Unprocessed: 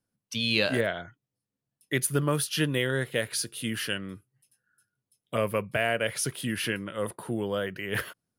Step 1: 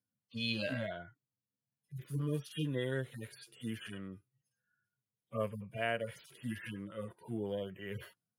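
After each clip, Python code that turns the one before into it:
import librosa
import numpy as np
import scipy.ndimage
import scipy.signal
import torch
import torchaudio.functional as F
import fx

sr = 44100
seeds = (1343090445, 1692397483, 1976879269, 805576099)

y = fx.hpss_only(x, sr, part='harmonic')
y = y * librosa.db_to_amplitude(-7.0)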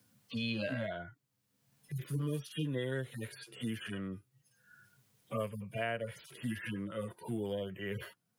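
y = fx.band_squash(x, sr, depth_pct=70)
y = y * librosa.db_to_amplitude(1.0)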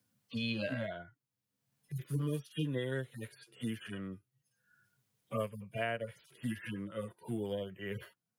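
y = fx.upward_expand(x, sr, threshold_db=-53.0, expansion=1.5)
y = y * librosa.db_to_amplitude(1.5)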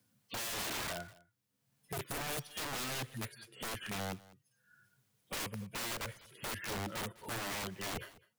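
y = (np.mod(10.0 ** (37.5 / 20.0) * x + 1.0, 2.0) - 1.0) / 10.0 ** (37.5 / 20.0)
y = y + 10.0 ** (-21.0 / 20.0) * np.pad(y, (int(203 * sr / 1000.0), 0))[:len(y)]
y = y * librosa.db_to_amplitude(3.5)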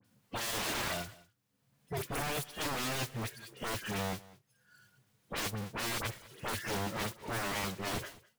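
y = fx.halfwave_hold(x, sr)
y = fx.dispersion(y, sr, late='highs', ms=48.0, hz=2700.0)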